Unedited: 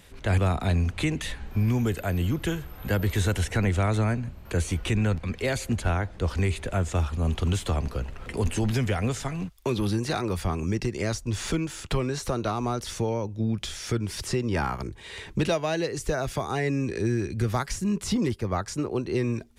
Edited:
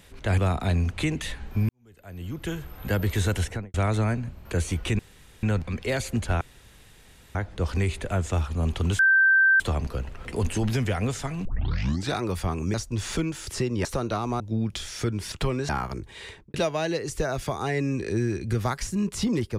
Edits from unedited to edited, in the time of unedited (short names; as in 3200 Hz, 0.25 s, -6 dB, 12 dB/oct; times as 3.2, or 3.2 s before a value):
1.69–2.66 fade in quadratic
3.41–3.74 studio fade out
4.99 insert room tone 0.44 s
5.97 insert room tone 0.94 s
7.61 add tone 1560 Hz -15 dBFS 0.61 s
9.46 tape start 0.70 s
10.75–11.09 cut
11.82–12.19 swap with 14.2–14.58
12.74–13.28 cut
15.11–15.43 studio fade out